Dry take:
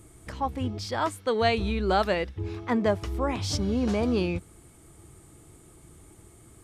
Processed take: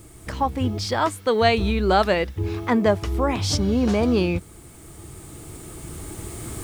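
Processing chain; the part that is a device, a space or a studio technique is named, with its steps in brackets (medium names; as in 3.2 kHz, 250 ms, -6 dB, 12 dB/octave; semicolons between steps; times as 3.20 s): cheap recorder with automatic gain (white noise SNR 37 dB; recorder AGC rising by 6 dB/s); trim +5.5 dB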